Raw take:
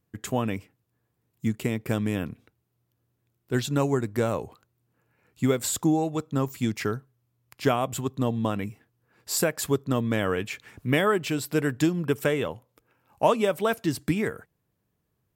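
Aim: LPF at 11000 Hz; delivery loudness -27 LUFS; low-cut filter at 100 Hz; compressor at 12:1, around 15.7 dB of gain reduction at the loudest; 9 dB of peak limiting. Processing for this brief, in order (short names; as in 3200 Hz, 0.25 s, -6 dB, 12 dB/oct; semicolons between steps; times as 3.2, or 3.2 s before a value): HPF 100 Hz; LPF 11000 Hz; compressor 12:1, threshold -33 dBFS; gain +13.5 dB; limiter -14.5 dBFS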